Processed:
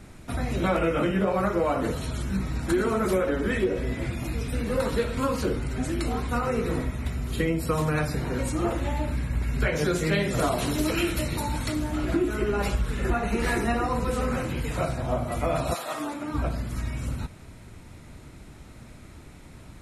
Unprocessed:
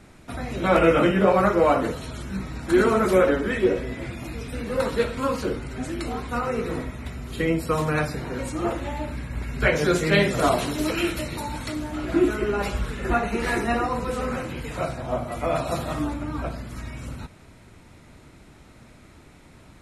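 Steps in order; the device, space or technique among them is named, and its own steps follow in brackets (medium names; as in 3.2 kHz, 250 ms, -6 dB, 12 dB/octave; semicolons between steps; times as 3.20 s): 15.73–16.33 s: high-pass 810 Hz -> 250 Hz 12 dB/octave; ASMR close-microphone chain (bass shelf 170 Hz +6.5 dB; compression 6:1, threshold -21 dBFS, peak gain reduction 10 dB; treble shelf 8 kHz +6 dB)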